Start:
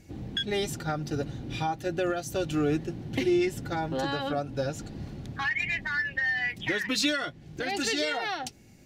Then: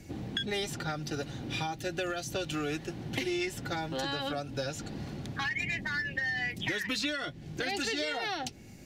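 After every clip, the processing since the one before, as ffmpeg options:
ffmpeg -i in.wav -filter_complex "[0:a]acrossover=split=98|620|2000|4800[link_01][link_02][link_03][link_04][link_05];[link_01]acompressor=threshold=-57dB:ratio=4[link_06];[link_02]acompressor=threshold=-42dB:ratio=4[link_07];[link_03]acompressor=threshold=-45dB:ratio=4[link_08];[link_04]acompressor=threshold=-42dB:ratio=4[link_09];[link_05]acompressor=threshold=-50dB:ratio=4[link_10];[link_06][link_07][link_08][link_09][link_10]amix=inputs=5:normalize=0,volume=4.5dB" out.wav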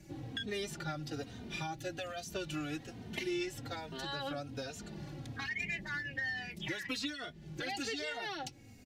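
ffmpeg -i in.wav -filter_complex "[0:a]asplit=2[link_01][link_02];[link_02]adelay=3,afreqshift=-1.2[link_03];[link_01][link_03]amix=inputs=2:normalize=1,volume=-3dB" out.wav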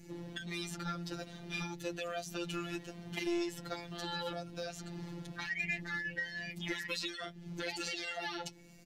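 ffmpeg -i in.wav -filter_complex "[0:a]afftfilt=real='hypot(re,im)*cos(PI*b)':imag='0':win_size=1024:overlap=0.75,acrossover=split=410[link_01][link_02];[link_01]aeval=exprs='clip(val(0),-1,0.00631)':channel_layout=same[link_03];[link_03][link_02]amix=inputs=2:normalize=0,volume=4dB" out.wav

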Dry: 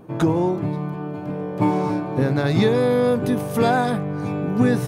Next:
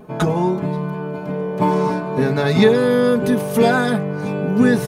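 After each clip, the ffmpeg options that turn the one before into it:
ffmpeg -i in.wav -af "equalizer=frequency=220:width_type=o:width=1.7:gain=-2.5,aecho=1:1:4.7:0.75,volume=3dB" out.wav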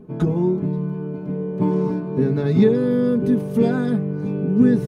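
ffmpeg -i in.wav -af "firequalizer=gain_entry='entry(370,0);entry(620,-13);entry(10000,-18)':delay=0.05:min_phase=1" out.wav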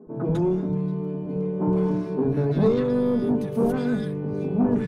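ffmpeg -i in.wav -filter_complex "[0:a]asoftclip=type=tanh:threshold=-13.5dB,acrossover=split=200|1400[link_01][link_02][link_03];[link_01]adelay=70[link_04];[link_03]adelay=150[link_05];[link_04][link_02][link_05]amix=inputs=3:normalize=0" out.wav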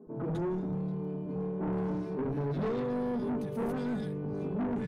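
ffmpeg -i in.wav -af "asoftclip=type=tanh:threshold=-23dB,volume=-5.5dB" out.wav

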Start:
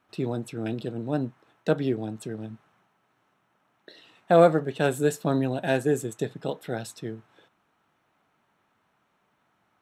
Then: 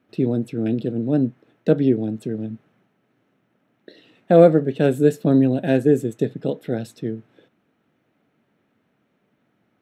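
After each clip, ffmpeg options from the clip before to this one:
ffmpeg -i in.wav -af "equalizer=frequency=125:width_type=o:width=1:gain=6,equalizer=frequency=250:width_type=o:width=1:gain=10,equalizer=frequency=500:width_type=o:width=1:gain=7,equalizer=frequency=1000:width_type=o:width=1:gain=-8,equalizer=frequency=2000:width_type=o:width=1:gain=3,equalizer=frequency=8000:width_type=o:width=1:gain=-5,volume=-1dB" out.wav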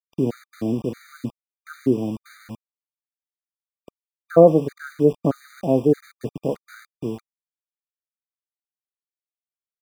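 ffmpeg -i in.wav -af "lowpass=frequency=1100:width_type=q:width=2.7,aeval=exprs='val(0)*gte(abs(val(0)),0.0237)':channel_layout=same,afftfilt=real='re*gt(sin(2*PI*1.6*pts/sr)*(1-2*mod(floor(b*sr/1024/1200),2)),0)':imag='im*gt(sin(2*PI*1.6*pts/sr)*(1-2*mod(floor(b*sr/1024/1200),2)),0)':win_size=1024:overlap=0.75,volume=-1.5dB" out.wav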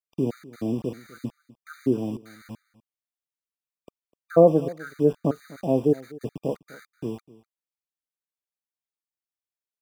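ffmpeg -i in.wav -af "aecho=1:1:251:0.0944,volume=-3.5dB" out.wav

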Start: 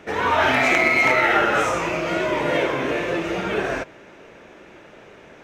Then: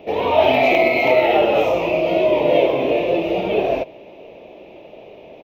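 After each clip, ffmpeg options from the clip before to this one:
ffmpeg -i in.wav -af "firequalizer=gain_entry='entry(140,0);entry(640,10);entry(1500,-20);entry(2500,4);entry(4000,-1);entry(8500,-25);entry(13000,4)':delay=0.05:min_phase=1" out.wav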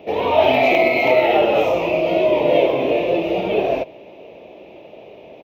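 ffmpeg -i in.wav -af "highpass=51" out.wav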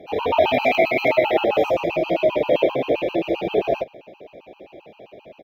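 ffmpeg -i in.wav -af "afftfilt=real='re*gt(sin(2*PI*7.6*pts/sr)*(1-2*mod(floor(b*sr/1024/800),2)),0)':imag='im*gt(sin(2*PI*7.6*pts/sr)*(1-2*mod(floor(b*sr/1024/800),2)),0)':win_size=1024:overlap=0.75" out.wav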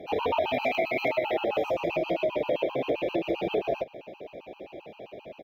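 ffmpeg -i in.wav -af "acompressor=threshold=-25dB:ratio=4" out.wav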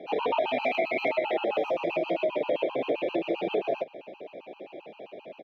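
ffmpeg -i in.wav -filter_complex "[0:a]acrossover=split=160 5100:gain=0.0794 1 0.224[link_01][link_02][link_03];[link_01][link_02][link_03]amix=inputs=3:normalize=0" out.wav

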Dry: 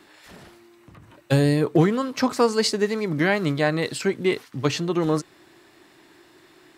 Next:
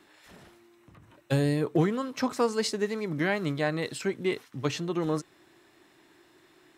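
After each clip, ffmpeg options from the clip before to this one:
ffmpeg -i in.wav -af "bandreject=frequency=4600:width=13,volume=-6.5dB" out.wav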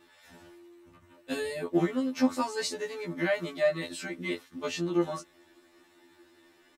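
ffmpeg -i in.wav -af "aecho=1:1:3.4:0.5,afftfilt=real='re*2*eq(mod(b,4),0)':imag='im*2*eq(mod(b,4),0)':win_size=2048:overlap=0.75" out.wav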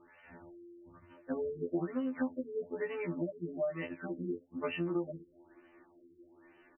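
ffmpeg -i in.wav -af "acompressor=threshold=-30dB:ratio=12,afftfilt=real='re*lt(b*sr/1024,480*pow(3100/480,0.5+0.5*sin(2*PI*1.1*pts/sr)))':imag='im*lt(b*sr/1024,480*pow(3100/480,0.5+0.5*sin(2*PI*1.1*pts/sr)))':win_size=1024:overlap=0.75" out.wav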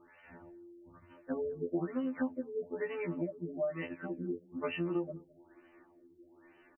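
ffmpeg -i in.wav -af "aecho=1:1:212:0.0708" out.wav

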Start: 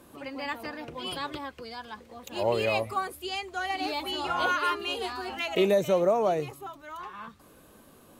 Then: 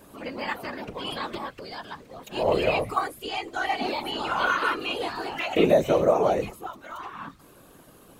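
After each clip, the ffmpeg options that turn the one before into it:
ffmpeg -i in.wav -filter_complex "[0:a]afftfilt=real='hypot(re,im)*cos(2*PI*random(0))':imag='hypot(re,im)*sin(2*PI*random(1))':win_size=512:overlap=0.75,acrossover=split=3500[link_01][link_02];[link_02]acompressor=threshold=-51dB:ratio=4:attack=1:release=60[link_03];[link_01][link_03]amix=inputs=2:normalize=0,volume=9dB" out.wav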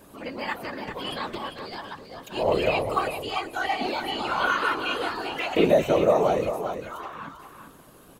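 ffmpeg -i in.wav -af "aecho=1:1:395|790|1185:0.376|0.0677|0.0122" out.wav

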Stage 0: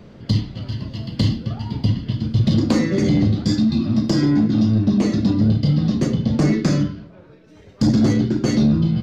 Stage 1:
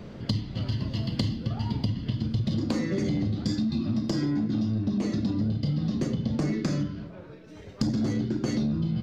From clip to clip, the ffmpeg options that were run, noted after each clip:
ffmpeg -i in.wav -af "acompressor=threshold=-25dB:ratio=10,volume=1dB" out.wav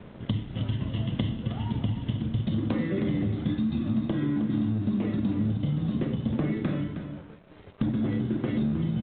ffmpeg -i in.wav -af "aresample=8000,aeval=exprs='sgn(val(0))*max(abs(val(0))-0.00398,0)':channel_layout=same,aresample=44100,aecho=1:1:314:0.316" out.wav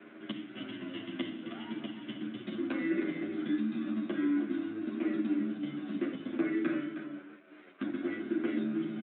ffmpeg -i in.wav -filter_complex "[0:a]highpass=frequency=260:width=0.5412,highpass=frequency=260:width=1.3066,equalizer=frequency=330:width_type=q:width=4:gain=8,equalizer=frequency=480:width_type=q:width=4:gain=-10,equalizer=frequency=890:width_type=q:width=4:gain=-9,equalizer=frequency=1500:width_type=q:width=4:gain=8,equalizer=frequency=2300:width_type=q:width=4:gain=5,lowpass=frequency=3400:width=0.5412,lowpass=frequency=3400:width=1.3066,asplit=2[link_01][link_02];[link_02]adelay=9.9,afreqshift=-0.58[link_03];[link_01][link_03]amix=inputs=2:normalize=1" out.wav

